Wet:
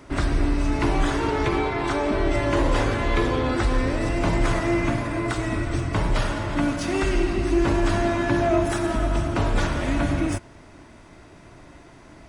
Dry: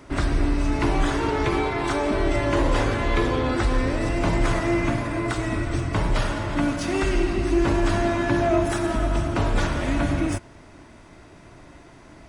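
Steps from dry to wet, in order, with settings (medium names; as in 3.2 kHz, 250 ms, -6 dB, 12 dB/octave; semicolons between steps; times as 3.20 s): 1.48–2.33 s: treble shelf 8.8 kHz -8.5 dB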